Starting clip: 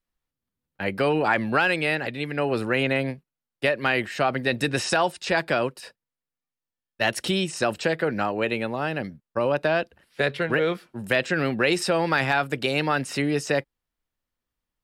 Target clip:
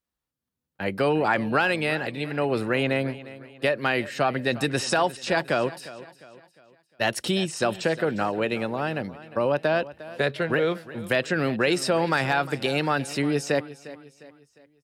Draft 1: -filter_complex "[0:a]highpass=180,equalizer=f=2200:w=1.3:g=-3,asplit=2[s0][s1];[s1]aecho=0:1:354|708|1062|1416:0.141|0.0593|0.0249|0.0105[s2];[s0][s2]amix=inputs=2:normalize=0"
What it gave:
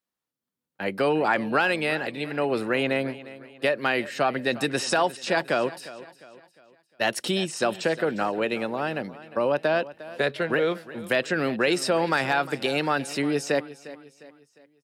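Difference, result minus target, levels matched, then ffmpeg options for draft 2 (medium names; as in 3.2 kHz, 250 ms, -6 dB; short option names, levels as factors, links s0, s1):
125 Hz band -5.0 dB
-filter_complex "[0:a]highpass=57,equalizer=f=2200:w=1.3:g=-3,asplit=2[s0][s1];[s1]aecho=0:1:354|708|1062|1416:0.141|0.0593|0.0249|0.0105[s2];[s0][s2]amix=inputs=2:normalize=0"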